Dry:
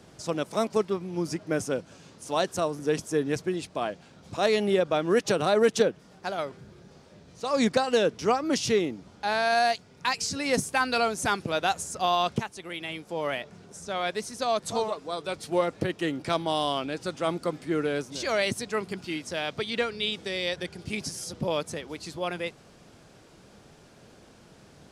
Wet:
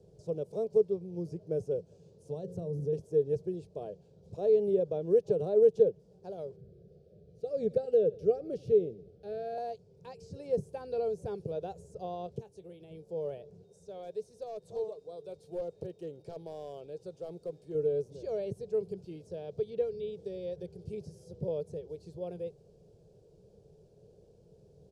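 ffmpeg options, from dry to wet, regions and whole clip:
ffmpeg -i in.wav -filter_complex "[0:a]asettb=1/sr,asplit=3[link_01][link_02][link_03];[link_01]atrim=end=2.294[link_04];[link_02]atrim=start=2.29:end=2.93,asetpts=PTS-STARTPTS,afade=type=in:duration=0.004:curve=qsin,afade=type=out:start_time=0.636:duration=0.004:curve=qsin,bandreject=frequency=60:width_type=h:width=6,bandreject=frequency=120:width_type=h:width=6,bandreject=frequency=180:width_type=h:width=6,bandreject=frequency=240:width_type=h:width=6,bandreject=frequency=300:width_type=h:width=6,bandreject=frequency=360:width_type=h:width=6,bandreject=frequency=420:width_type=h:width=6,bandreject=frequency=480:width_type=h:width=6,bandreject=frequency=540:width_type=h:width=6,acompressor=threshold=-32dB:ratio=3:attack=3.2:release=140:knee=1:detection=peak,equalizer=frequency=150:width=0.79:gain=12.5[link_05];[link_03]atrim=start=2.926[link_06];[link_04][link_05]acrossfade=duration=0.004:curve1=hsin:curve2=qsin[link_07];[link_07][link_06]acrossfade=duration=0.004:curve1=qsin:curve2=hsin,asettb=1/sr,asplit=3[link_08][link_09][link_10];[link_08]atrim=end=6.564[link_11];[link_09]atrim=start=6.56:end=9.58,asetpts=PTS-STARTPTS,afade=type=in:duration=0.004:curve=qsin,afade=type=out:start_time=3.016:duration=0.004:curve=qsin,asuperstop=centerf=960:order=8:qfactor=2.3,equalizer=frequency=6700:width_type=o:width=1.1:gain=-9,aecho=1:1:88|176|264|352:0.0668|0.0374|0.021|0.0117,atrim=end_sample=133182[link_12];[link_10]atrim=start=9.576[link_13];[link_11][link_12]acrossfade=duration=0.004:curve1=hsin:curve2=qsin[link_14];[link_14][link_13]acrossfade=duration=0.004:curve1=qsin:curve2=hsin,asettb=1/sr,asplit=3[link_15][link_16][link_17];[link_15]atrim=end=12.264[link_18];[link_16]atrim=start=12.26:end=12.91,asetpts=PTS-STARTPTS,afade=type=in:duration=0.004:curve=qsin,afade=type=out:start_time=0.646:duration=0.004:curve=qsin,acompressor=threshold=-37dB:ratio=1.5:attack=3.2:release=140:knee=1:detection=peak,asplit=2[link_19][link_20];[link_20]adelay=22,volume=-14dB[link_21];[link_19][link_21]amix=inputs=2:normalize=0,atrim=end_sample=28665[link_22];[link_17]atrim=start=12.906[link_23];[link_18][link_22]acrossfade=duration=0.004:curve1=hsin:curve2=qsin[link_24];[link_24][link_23]acrossfade=duration=0.004:curve1=qsin:curve2=hsin,asettb=1/sr,asplit=3[link_25][link_26][link_27];[link_25]atrim=end=13.644[link_28];[link_26]atrim=start=13.64:end=17.75,asetpts=PTS-STARTPTS,afade=type=in:duration=0.004:curve=qsin,afade=type=out:start_time=4.106:duration=0.004:curve=qsin,aeval=exprs='0.112*(abs(mod(val(0)/0.112+3,4)-2)-1)':channel_layout=same,aeval=exprs='val(0)+0.001*sin(2*PI*3700*n/s)':channel_layout=same,lowshelf=frequency=470:gain=-8.5[link_29];[link_27]atrim=start=17.746[link_30];[link_28][link_29]acrossfade=duration=0.004:curve1=hsin:curve2=qsin[link_31];[link_31][link_30]acrossfade=duration=0.004:curve1=qsin:curve2=hsin,bandreject=frequency=2000:width=6.3,acrossover=split=2800[link_32][link_33];[link_33]acompressor=threshold=-43dB:ratio=4:attack=1:release=60[link_34];[link_32][link_34]amix=inputs=2:normalize=0,firequalizer=gain_entry='entry(170,0);entry(260,-17);entry(430,6);entry(660,-9);entry(1200,-28);entry(4400,-16)':delay=0.05:min_phase=1,volume=-4dB" out.wav

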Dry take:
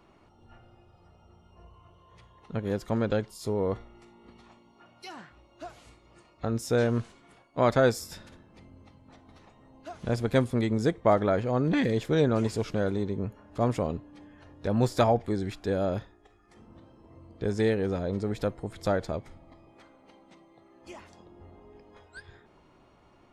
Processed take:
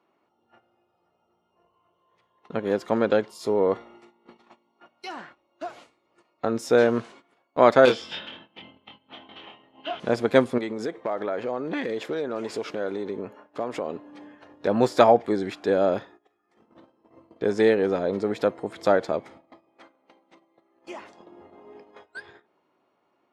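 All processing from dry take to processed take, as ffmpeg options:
ffmpeg -i in.wav -filter_complex "[0:a]asettb=1/sr,asplit=3[link_01][link_02][link_03];[link_01]atrim=end=7.854[link_04];[link_02]atrim=start=7.85:end=10,asetpts=PTS-STARTPTS,afade=type=in:duration=0.004:curve=qsin,afade=type=out:start_time=2.146:duration=0.004:curve=qsin,lowpass=frequency=3100:width_type=q:width=13,asoftclip=type=hard:threshold=-22dB,asplit=2[link_05][link_06];[link_06]adelay=24,volume=-4dB[link_07];[link_05][link_07]amix=inputs=2:normalize=0,atrim=end_sample=94815[link_08];[link_03]atrim=start=9.996[link_09];[link_04][link_08]acrossfade=duration=0.004:curve1=hsin:curve2=qsin[link_10];[link_10][link_09]acrossfade=duration=0.004:curve1=qsin:curve2=hsin,asettb=1/sr,asplit=3[link_11][link_12][link_13];[link_11]atrim=end=10.584[link_14];[link_12]atrim=start=10.58:end=14.06,asetpts=PTS-STARTPTS,afade=type=in:duration=0.004:curve=qsin,afade=type=out:start_time=3.476:duration=0.004:curve=qsin,bass=frequency=250:gain=-7,treble=frequency=4000:gain=-2,acompressor=threshold=-30dB:ratio=12:attack=3.2:release=140:knee=1:detection=peak,asoftclip=type=hard:threshold=-26.5dB[link_15];[link_13]atrim=start=14.056[link_16];[link_14][link_15]acrossfade=duration=0.004:curve1=hsin:curve2=qsin[link_17];[link_17][link_16]acrossfade=duration=0.004:curve1=qsin:curve2=hsin,highpass=290,highshelf=frequency=5800:gain=-12,agate=range=-16dB:threshold=-55dB:ratio=16:detection=peak,volume=8dB" out.wav

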